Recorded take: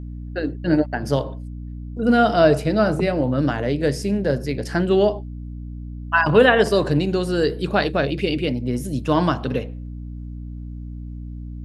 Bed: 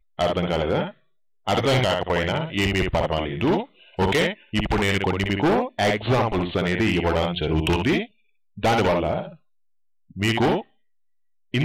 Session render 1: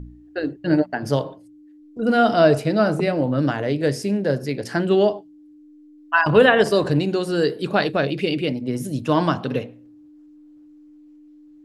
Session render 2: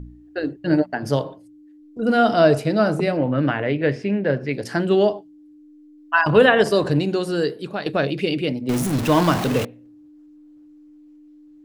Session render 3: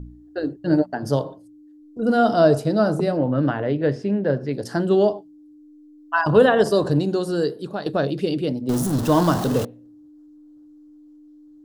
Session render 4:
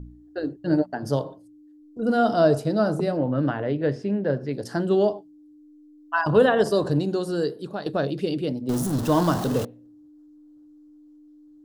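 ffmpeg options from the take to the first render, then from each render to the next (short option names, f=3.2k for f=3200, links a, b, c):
-af "bandreject=f=60:t=h:w=4,bandreject=f=120:t=h:w=4,bandreject=f=180:t=h:w=4,bandreject=f=240:t=h:w=4"
-filter_complex "[0:a]asettb=1/sr,asplit=3[a][b][c];[a]atrim=end=3.174[d];[b]atrim=start=3.17:end=4.53,asetpts=PTS-STARTPTS,afade=t=in:d=0.004:c=qsin,afade=t=out:st=1.356:d=0.004:c=qsin,lowpass=f=2.4k:t=q:w=2[e];[c]atrim=start=4.526[f];[d][e]acrossfade=d=0.004:c1=hsin:c2=qsin[g];[g][f]acrossfade=d=0.004:c1=qsin:c2=hsin,asettb=1/sr,asplit=3[h][i][j];[h]atrim=end=8.694[k];[i]atrim=start=8.69:end=9.65,asetpts=PTS-STARTPTS,afade=t=in:d=0.004:c=qsin,afade=t=out:st=0.956:d=0.004:c=qsin,aeval=exprs='val(0)+0.5*0.0891*sgn(val(0))':c=same[l];[j]atrim=start=9.646[m];[k][l]acrossfade=d=0.004:c1=hsin:c2=qsin[n];[n][m]acrossfade=d=0.004:c1=qsin:c2=hsin,asplit=2[o][p];[o]atrim=end=7.86,asetpts=PTS-STARTPTS,afade=t=out:st=7.27:d=0.59:silence=0.266073[q];[p]atrim=start=7.86,asetpts=PTS-STARTPTS,afade=t=in:d=0.004:c=hsin:silence=0.266073[r];[q][r]concat=n=2:v=0:a=1"
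-af "equalizer=f=2.3k:w=1.9:g=-14.5"
-af "volume=-3dB"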